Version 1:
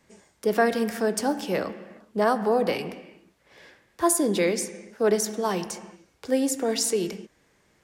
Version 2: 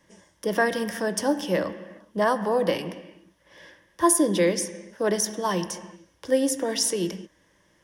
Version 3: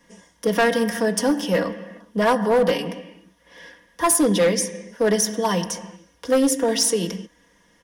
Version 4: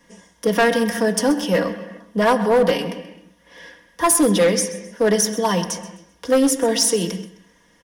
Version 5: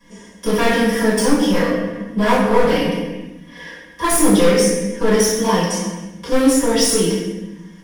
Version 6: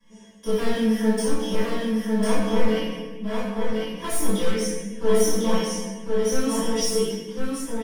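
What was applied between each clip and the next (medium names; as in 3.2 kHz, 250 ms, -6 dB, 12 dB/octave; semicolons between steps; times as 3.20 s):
rippled EQ curve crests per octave 1.2, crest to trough 9 dB
comb 4.2 ms, depth 71%; hard clipper -16 dBFS, distortion -14 dB; trim +3 dB
feedback delay 130 ms, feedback 31%, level -17 dB; trim +2 dB
one-sided wavefolder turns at -13.5 dBFS; in parallel at -0.5 dB: compression, threshold -26 dBFS, peak gain reduction 12 dB; on the sum: reverberation RT60 0.85 s, pre-delay 3 ms, DRR -11 dB; trim -14.5 dB
chorus 0.27 Hz, delay 19 ms, depth 7.3 ms; feedback comb 220 Hz, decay 0.17 s, harmonics all, mix 90%; delay 1051 ms -3.5 dB; trim +2 dB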